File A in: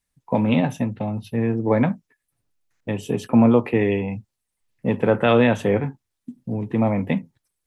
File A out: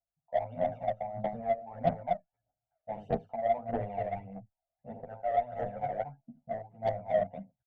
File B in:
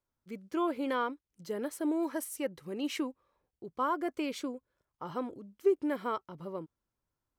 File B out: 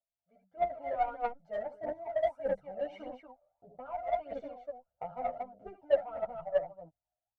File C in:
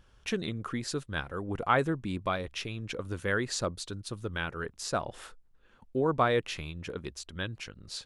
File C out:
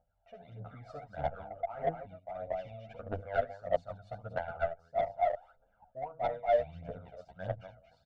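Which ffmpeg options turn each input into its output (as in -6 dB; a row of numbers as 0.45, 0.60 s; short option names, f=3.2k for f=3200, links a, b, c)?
-filter_complex "[0:a]dynaudnorm=f=190:g=7:m=11.5dB,bandpass=f=680:t=q:w=8.3:csg=0,aecho=1:1:1.4:0.83,aecho=1:1:54|73|235:0.251|0.398|0.473,areverse,acompressor=threshold=-33dB:ratio=20,areverse,aphaser=in_gain=1:out_gain=1:delay=1.8:decay=0.68:speed=1.6:type=triangular,aeval=exprs='0.133*(cos(1*acos(clip(val(0)/0.133,-1,1)))-cos(1*PI/2))+0.00944*(cos(7*acos(clip(val(0)/0.133,-1,1)))-cos(7*PI/2))':c=same,aemphasis=mode=reproduction:type=bsi,asplit=2[a][b];[b]adelay=9.9,afreqshift=0.61[c];[a][c]amix=inputs=2:normalize=1,volume=4.5dB"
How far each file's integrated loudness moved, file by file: -13.0, -1.0, -3.5 LU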